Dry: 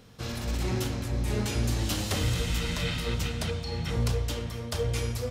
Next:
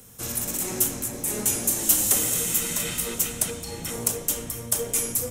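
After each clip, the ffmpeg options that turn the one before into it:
-filter_complex "[0:a]acrossover=split=160|430|7000[s0][s1][s2][s3];[s0]aeval=exprs='0.015*(abs(mod(val(0)/0.015+3,4)-2)-1)':c=same[s4];[s4][s1][s2][s3]amix=inputs=4:normalize=0,aexciter=amount=8.6:drive=6.7:freq=6600"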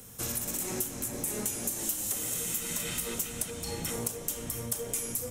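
-af "acompressor=threshold=0.0316:ratio=6"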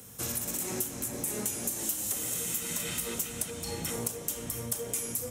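-af "highpass=55"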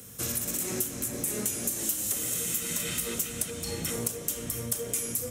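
-af "equalizer=f=860:w=2.8:g=-7,volume=1.33"

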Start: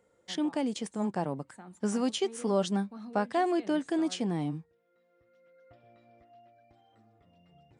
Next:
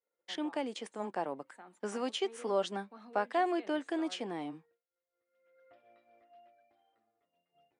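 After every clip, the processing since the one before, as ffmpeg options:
-filter_complex "[0:a]acrossover=split=290 3100:gain=0.0708 1 0.141[s0][s1][s2];[s0][s1][s2]amix=inputs=3:normalize=0,agate=range=0.0224:threshold=0.00126:ratio=3:detection=peak,highshelf=f=3500:g=11.5,volume=0.794"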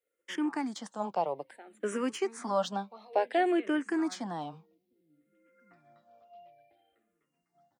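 -filter_complex "[0:a]acrossover=split=130|2600[s0][s1][s2];[s0]aecho=1:1:704|1408|2112|2816|3520:0.562|0.236|0.0992|0.0417|0.0175[s3];[s2]asoftclip=type=tanh:threshold=0.0158[s4];[s3][s1][s4]amix=inputs=3:normalize=0,asplit=2[s5][s6];[s6]afreqshift=-0.58[s7];[s5][s7]amix=inputs=2:normalize=1,volume=2.11"

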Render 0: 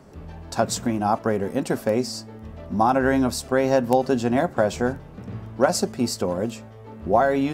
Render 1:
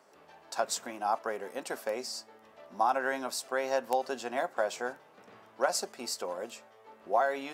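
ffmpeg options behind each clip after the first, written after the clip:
-af "highpass=620,volume=0.501"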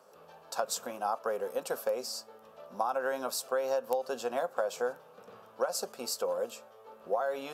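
-af "equalizer=f=160:t=o:w=0.33:g=5,equalizer=f=315:t=o:w=0.33:g=-8,equalizer=f=500:t=o:w=0.33:g=10,equalizer=f=1250:t=o:w=0.33:g=5,equalizer=f=2000:t=o:w=0.33:g=-11,equalizer=f=12500:t=o:w=0.33:g=10,acompressor=threshold=0.0447:ratio=6"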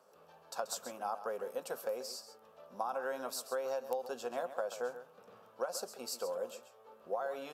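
-af "aecho=1:1:134:0.251,volume=0.501"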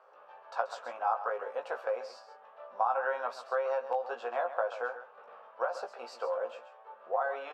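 -filter_complex "[0:a]asuperpass=centerf=1200:order=4:qfactor=0.69,asplit=2[s0][s1];[s1]adelay=17,volume=0.562[s2];[s0][s2]amix=inputs=2:normalize=0,volume=2.37"

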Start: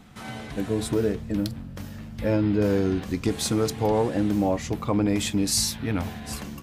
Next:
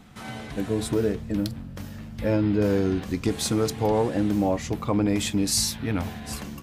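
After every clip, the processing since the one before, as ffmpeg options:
-af anull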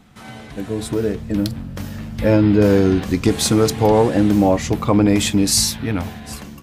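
-af "dynaudnorm=f=510:g=5:m=3.76"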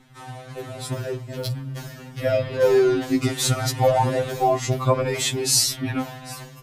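-af "afftfilt=real='re*2.45*eq(mod(b,6),0)':imag='im*2.45*eq(mod(b,6),0)':win_size=2048:overlap=0.75"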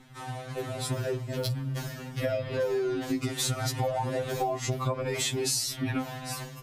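-af "acompressor=threshold=0.0501:ratio=10"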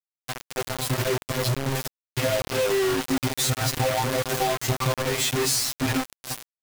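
-af "acrusher=bits=4:mix=0:aa=0.000001,volume=1.58"

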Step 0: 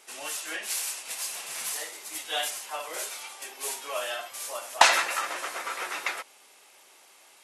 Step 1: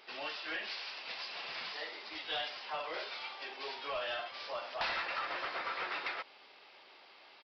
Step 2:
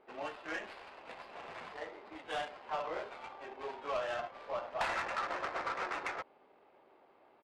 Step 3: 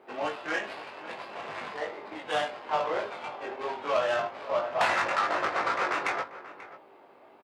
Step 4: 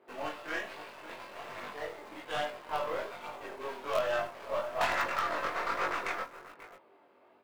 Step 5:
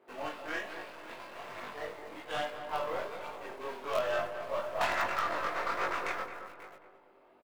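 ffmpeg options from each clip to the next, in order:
-af "acompressor=threshold=0.02:ratio=2,aresample=11025,asoftclip=type=tanh:threshold=0.0299,aresample=44100"
-af "adynamicsmooth=sensitivity=4:basefreq=690,volume=1.58"
-filter_complex "[0:a]highpass=f=93:w=0.5412,highpass=f=93:w=1.3066,asplit=2[s0][s1];[s1]adelay=20,volume=0.596[s2];[s0][s2]amix=inputs=2:normalize=0,asplit=2[s3][s4];[s4]adelay=536.4,volume=0.178,highshelf=f=4000:g=-12.1[s5];[s3][s5]amix=inputs=2:normalize=0,volume=2.51"
-filter_complex "[0:a]bandreject=f=800:w=14,asplit=2[s0][s1];[s1]acrusher=bits=4:dc=4:mix=0:aa=0.000001,volume=0.473[s2];[s0][s2]amix=inputs=2:normalize=0,flanger=delay=20:depth=3.8:speed=1.2,volume=0.631"
-filter_complex "[0:a]asplit=2[s0][s1];[s1]adelay=218,lowpass=f=1700:p=1,volume=0.398,asplit=2[s2][s3];[s3]adelay=218,lowpass=f=1700:p=1,volume=0.41,asplit=2[s4][s5];[s5]adelay=218,lowpass=f=1700:p=1,volume=0.41,asplit=2[s6][s7];[s7]adelay=218,lowpass=f=1700:p=1,volume=0.41,asplit=2[s8][s9];[s9]adelay=218,lowpass=f=1700:p=1,volume=0.41[s10];[s0][s2][s4][s6][s8][s10]amix=inputs=6:normalize=0,volume=0.891"

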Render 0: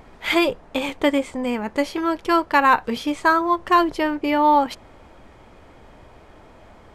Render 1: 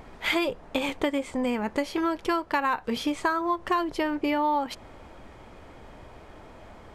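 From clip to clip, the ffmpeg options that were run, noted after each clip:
-af "acompressor=threshold=0.0708:ratio=5"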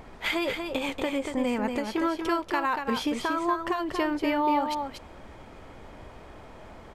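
-af "alimiter=limit=0.141:level=0:latency=1:release=198,aecho=1:1:236:0.501"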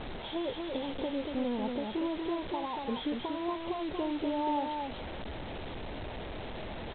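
-af "aeval=exprs='val(0)+0.5*0.0335*sgn(val(0))':c=same,asuperstop=centerf=1800:order=8:qfactor=0.75,aresample=8000,acrusher=bits=5:mix=0:aa=0.000001,aresample=44100,volume=0.422"

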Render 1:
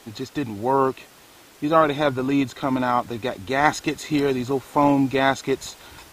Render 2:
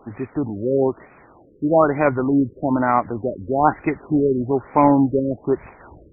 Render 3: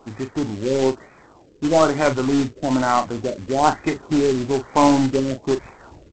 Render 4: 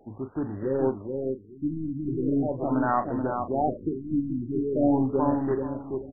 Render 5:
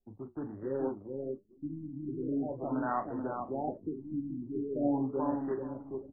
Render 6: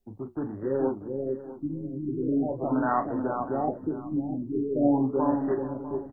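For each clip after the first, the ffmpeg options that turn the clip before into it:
-af "afftfilt=real='re*lt(b*sr/1024,550*pow(2600/550,0.5+0.5*sin(2*PI*1.1*pts/sr)))':imag='im*lt(b*sr/1024,550*pow(2600/550,0.5+0.5*sin(2*PI*1.1*pts/sr)))':win_size=1024:overlap=0.75,volume=1.5"
-filter_complex "[0:a]aeval=exprs='0.891*(cos(1*acos(clip(val(0)/0.891,-1,1)))-cos(1*PI/2))+0.0631*(cos(2*acos(clip(val(0)/0.891,-1,1)))-cos(2*PI/2))+0.0562*(cos(4*acos(clip(val(0)/0.891,-1,1)))-cos(4*PI/2))+0.00891*(cos(5*acos(clip(val(0)/0.891,-1,1)))-cos(5*PI/2))':c=same,aresample=16000,acrusher=bits=3:mode=log:mix=0:aa=0.000001,aresample=44100,asplit=2[s0][s1];[s1]adelay=38,volume=0.316[s2];[s0][s2]amix=inputs=2:normalize=0,volume=0.891"
-filter_complex "[0:a]asplit=2[s0][s1];[s1]adelay=431,lowpass=f=1200:p=1,volume=0.631,asplit=2[s2][s3];[s3]adelay=431,lowpass=f=1200:p=1,volume=0.26,asplit=2[s4][s5];[s5]adelay=431,lowpass=f=1200:p=1,volume=0.26,asplit=2[s6][s7];[s7]adelay=431,lowpass=f=1200:p=1,volume=0.26[s8];[s0][s2][s4][s6][s8]amix=inputs=5:normalize=0,afftfilt=real='re*lt(b*sr/1024,320*pow(2000/320,0.5+0.5*sin(2*PI*0.41*pts/sr)))':imag='im*lt(b*sr/1024,320*pow(2000/320,0.5+0.5*sin(2*PI*0.41*pts/sr)))':win_size=1024:overlap=0.75,volume=0.473"
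-filter_complex "[0:a]anlmdn=0.631,acrossover=split=110|340[s0][s1][s2];[s0]acompressor=threshold=0.00282:ratio=10[s3];[s3][s1][s2]amix=inputs=3:normalize=0,flanger=delay=9.3:depth=6.6:regen=-57:speed=1.3:shape=triangular,volume=0.631"
-af "aecho=1:1:648:0.178,volume=2.24"

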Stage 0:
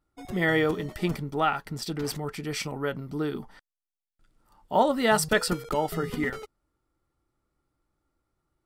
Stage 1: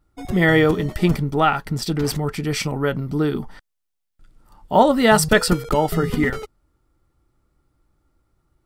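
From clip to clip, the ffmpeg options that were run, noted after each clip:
-af "lowshelf=f=170:g=8,volume=2.24"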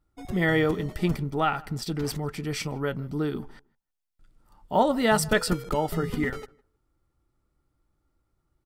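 -filter_complex "[0:a]asplit=2[s0][s1];[s1]adelay=157,lowpass=f=1700:p=1,volume=0.075,asplit=2[s2][s3];[s3]adelay=157,lowpass=f=1700:p=1,volume=0.16[s4];[s0][s2][s4]amix=inputs=3:normalize=0,volume=0.422"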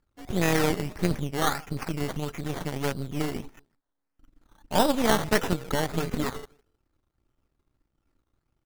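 -af "aeval=exprs='if(lt(val(0),0),0.251*val(0),val(0))':c=same,acrusher=samples=14:mix=1:aa=0.000001:lfo=1:lforange=8.4:lforate=1.6,tremolo=f=280:d=0.462,volume=1.58"

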